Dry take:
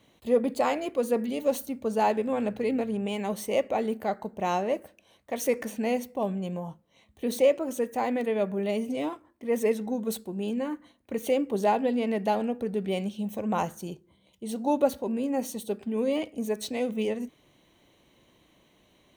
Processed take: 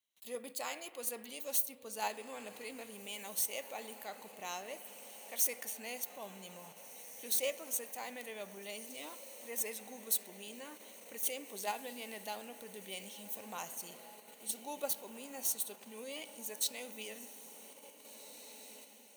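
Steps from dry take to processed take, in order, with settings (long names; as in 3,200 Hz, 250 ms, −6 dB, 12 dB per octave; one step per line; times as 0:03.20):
first-order pre-emphasis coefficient 0.97
noise gate with hold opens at −60 dBFS
feedback delay with all-pass diffusion 1,850 ms, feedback 60%, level −14.5 dB
spring reverb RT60 3 s, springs 52 ms, chirp 75 ms, DRR 16 dB
in parallel at −2 dB: output level in coarse steps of 20 dB
on the sum: level +1 dB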